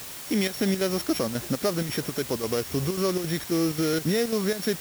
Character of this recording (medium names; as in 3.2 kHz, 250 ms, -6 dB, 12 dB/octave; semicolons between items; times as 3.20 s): a buzz of ramps at a fixed pitch in blocks of 8 samples; chopped level 3.7 Hz, depth 60%, duty 75%; a quantiser's noise floor 6-bit, dither triangular